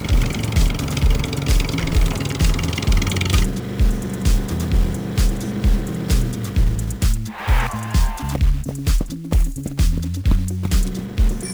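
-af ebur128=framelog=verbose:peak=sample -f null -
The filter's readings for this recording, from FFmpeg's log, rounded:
Integrated loudness:
  I:         -21.1 LUFS
  Threshold: -31.1 LUFS
Loudness range:
  LRA:         1.8 LU
  Threshold: -41.2 LUFS
  LRA low:   -22.0 LUFS
  LRA high:  -20.1 LUFS
Sample peak:
  Peak:       -7.5 dBFS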